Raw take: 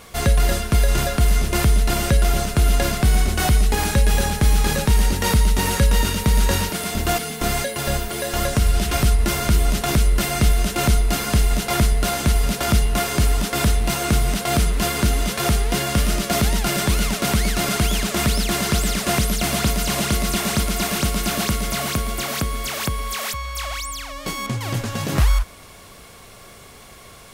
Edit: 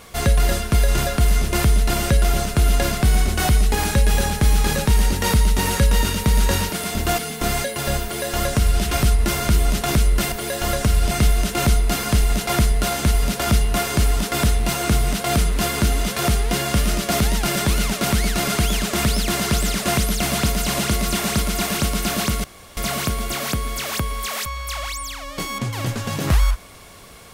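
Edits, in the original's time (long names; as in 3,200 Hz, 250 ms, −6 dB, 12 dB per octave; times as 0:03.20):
0:08.04–0:08.83: duplicate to 0:10.32
0:21.65: splice in room tone 0.33 s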